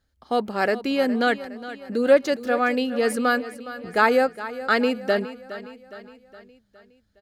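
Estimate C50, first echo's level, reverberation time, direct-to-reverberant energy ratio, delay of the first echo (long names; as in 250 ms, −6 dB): no reverb audible, −14.5 dB, no reverb audible, no reverb audible, 414 ms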